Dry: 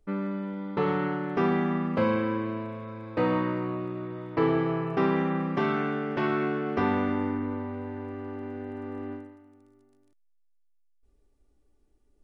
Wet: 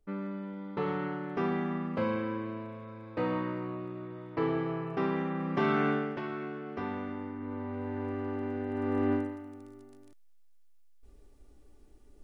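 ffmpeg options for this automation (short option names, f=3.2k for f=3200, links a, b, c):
-af "volume=22dB,afade=t=in:st=5.36:d=0.54:silence=0.421697,afade=t=out:st=5.9:d=0.31:silence=0.251189,afade=t=in:st=7.36:d=0.72:silence=0.237137,afade=t=in:st=8.69:d=0.51:silence=0.398107"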